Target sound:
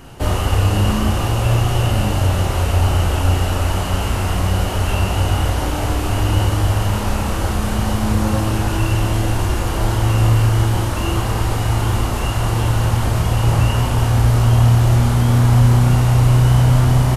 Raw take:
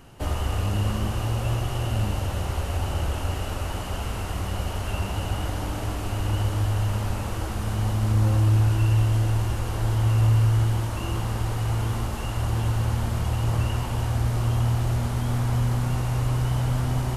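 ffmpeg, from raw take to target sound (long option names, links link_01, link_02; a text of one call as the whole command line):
ffmpeg -i in.wav -af "aecho=1:1:22|33:0.266|0.631,volume=8.5dB" out.wav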